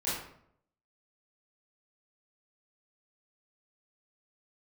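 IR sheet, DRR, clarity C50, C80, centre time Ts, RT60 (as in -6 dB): -11.5 dB, 0.5 dB, 5.5 dB, 59 ms, 0.70 s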